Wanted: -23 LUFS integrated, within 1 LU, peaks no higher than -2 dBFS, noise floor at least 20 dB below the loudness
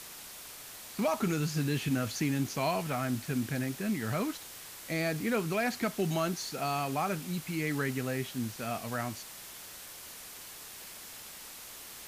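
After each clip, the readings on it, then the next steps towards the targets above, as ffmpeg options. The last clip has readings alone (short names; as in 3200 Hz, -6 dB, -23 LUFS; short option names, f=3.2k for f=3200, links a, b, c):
noise floor -47 dBFS; noise floor target -54 dBFS; loudness -34.0 LUFS; peak -19.0 dBFS; loudness target -23.0 LUFS
-> -af "afftdn=nr=7:nf=-47"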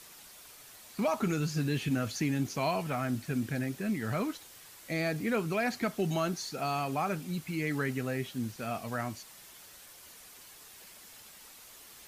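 noise floor -53 dBFS; loudness -33.0 LUFS; peak -19.5 dBFS; loudness target -23.0 LUFS
-> -af "volume=10dB"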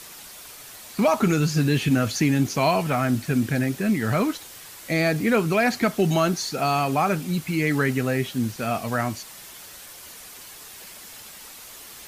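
loudness -23.0 LUFS; peak -9.5 dBFS; noise floor -43 dBFS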